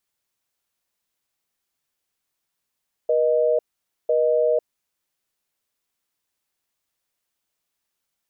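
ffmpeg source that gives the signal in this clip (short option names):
-f lavfi -i "aevalsrc='0.112*(sin(2*PI*480*t)+sin(2*PI*620*t))*clip(min(mod(t,1),0.5-mod(t,1))/0.005,0,1)':d=1.57:s=44100"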